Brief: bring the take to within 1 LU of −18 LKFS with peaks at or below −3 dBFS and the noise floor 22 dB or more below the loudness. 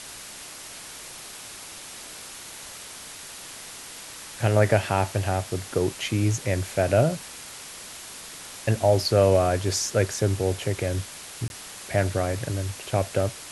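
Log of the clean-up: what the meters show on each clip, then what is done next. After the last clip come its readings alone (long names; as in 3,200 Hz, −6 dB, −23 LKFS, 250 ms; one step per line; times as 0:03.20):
number of dropouts 1; longest dropout 21 ms; background noise floor −41 dBFS; target noise floor −47 dBFS; integrated loudness −24.5 LKFS; sample peak −6.0 dBFS; target loudness −18.0 LKFS
→ repair the gap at 0:11.48, 21 ms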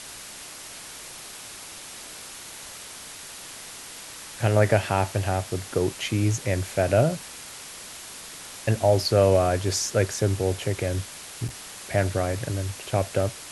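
number of dropouts 0; background noise floor −41 dBFS; target noise floor −47 dBFS
→ broadband denoise 6 dB, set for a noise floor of −41 dBFS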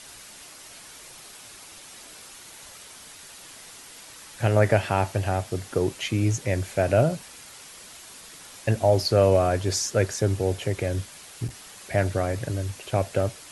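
background noise floor −46 dBFS; target noise floor −47 dBFS
→ broadband denoise 6 dB, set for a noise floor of −46 dBFS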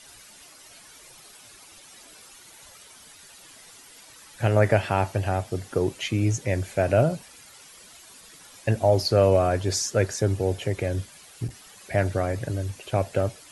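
background noise floor −50 dBFS; integrated loudness −25.0 LKFS; sample peak −6.0 dBFS; target loudness −18.0 LKFS
→ level +7 dB
brickwall limiter −3 dBFS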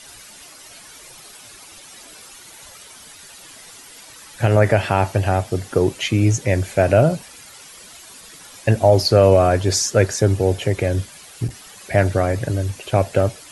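integrated loudness −18.5 LKFS; sample peak −3.0 dBFS; background noise floor −43 dBFS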